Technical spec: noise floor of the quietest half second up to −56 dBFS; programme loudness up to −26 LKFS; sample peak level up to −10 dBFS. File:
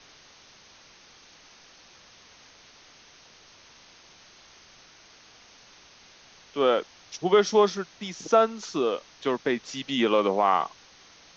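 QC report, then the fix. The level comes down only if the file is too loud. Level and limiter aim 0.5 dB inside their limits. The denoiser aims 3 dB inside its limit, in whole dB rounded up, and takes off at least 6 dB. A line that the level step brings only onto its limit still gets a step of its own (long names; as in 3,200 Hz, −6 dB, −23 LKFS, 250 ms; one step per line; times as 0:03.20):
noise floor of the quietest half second −54 dBFS: out of spec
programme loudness −25.0 LKFS: out of spec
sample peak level −7.5 dBFS: out of spec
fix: broadband denoise 6 dB, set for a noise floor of −54 dBFS
level −1.5 dB
brickwall limiter −10.5 dBFS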